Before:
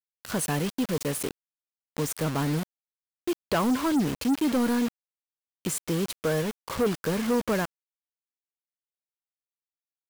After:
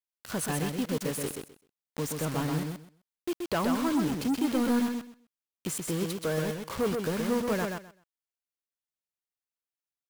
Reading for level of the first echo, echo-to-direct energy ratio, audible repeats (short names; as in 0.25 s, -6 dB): -4.5 dB, -4.5 dB, 3